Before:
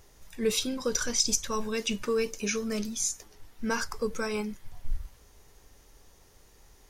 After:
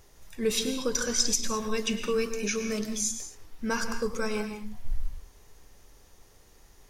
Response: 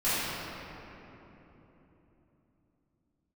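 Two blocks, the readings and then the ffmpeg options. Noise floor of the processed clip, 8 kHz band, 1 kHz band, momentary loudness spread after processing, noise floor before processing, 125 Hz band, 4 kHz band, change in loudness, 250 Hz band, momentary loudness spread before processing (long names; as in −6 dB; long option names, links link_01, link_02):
−57 dBFS, +0.5 dB, +1.0 dB, 15 LU, −58 dBFS, +1.0 dB, +0.5 dB, +0.5 dB, +1.0 dB, 16 LU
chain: -filter_complex "[0:a]asplit=2[link_01][link_02];[1:a]atrim=start_sample=2205,atrim=end_sample=6174,adelay=99[link_03];[link_02][link_03]afir=irnorm=-1:irlink=0,volume=-17dB[link_04];[link_01][link_04]amix=inputs=2:normalize=0"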